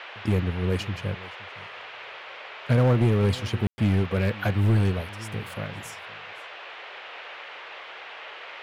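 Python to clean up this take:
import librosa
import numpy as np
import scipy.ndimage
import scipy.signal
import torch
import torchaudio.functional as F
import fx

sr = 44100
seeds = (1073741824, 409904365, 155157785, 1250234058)

y = fx.fix_declip(x, sr, threshold_db=-15.0)
y = fx.fix_ambience(y, sr, seeds[0], print_start_s=7.56, print_end_s=8.06, start_s=3.67, end_s=3.78)
y = fx.noise_reduce(y, sr, print_start_s=7.56, print_end_s=8.06, reduce_db=28.0)
y = fx.fix_echo_inverse(y, sr, delay_ms=519, level_db=-21.0)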